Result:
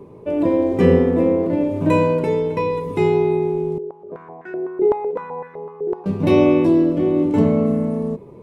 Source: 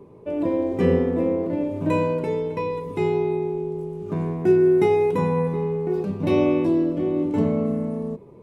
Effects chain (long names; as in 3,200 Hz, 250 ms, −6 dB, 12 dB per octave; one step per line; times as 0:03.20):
0:03.78–0:06.06: band-pass on a step sequencer 7.9 Hz 440–1,600 Hz
level +5.5 dB